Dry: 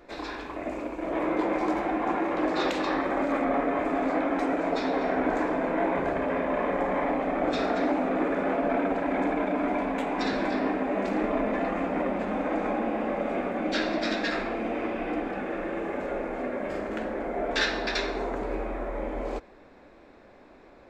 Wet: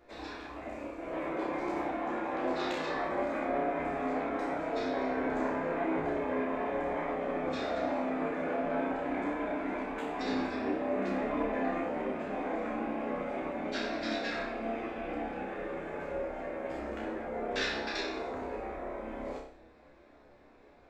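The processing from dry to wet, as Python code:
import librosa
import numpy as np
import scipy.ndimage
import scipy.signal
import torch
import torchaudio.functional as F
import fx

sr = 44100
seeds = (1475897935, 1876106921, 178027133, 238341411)

y = fx.room_flutter(x, sr, wall_m=5.3, rt60_s=0.53)
y = fx.chorus_voices(y, sr, voices=6, hz=0.73, base_ms=13, depth_ms=1.4, mix_pct=35)
y = y * librosa.db_to_amplitude(-6.0)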